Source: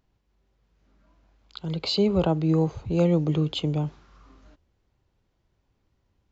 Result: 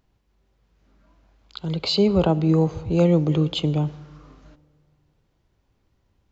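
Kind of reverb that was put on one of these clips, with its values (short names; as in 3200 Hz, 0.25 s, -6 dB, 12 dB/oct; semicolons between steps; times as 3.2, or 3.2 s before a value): digital reverb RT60 2.1 s, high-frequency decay 0.45×, pre-delay 30 ms, DRR 20 dB; gain +3.5 dB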